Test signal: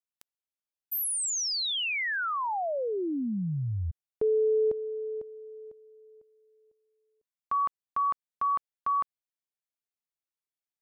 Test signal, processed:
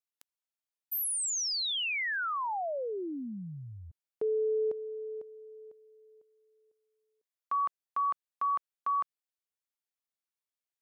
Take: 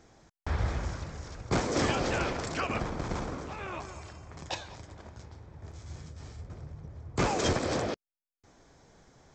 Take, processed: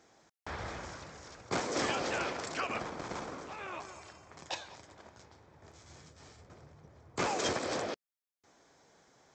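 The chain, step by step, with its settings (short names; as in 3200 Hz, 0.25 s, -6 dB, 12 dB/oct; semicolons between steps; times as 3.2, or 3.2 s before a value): HPF 410 Hz 6 dB/oct; gain -2 dB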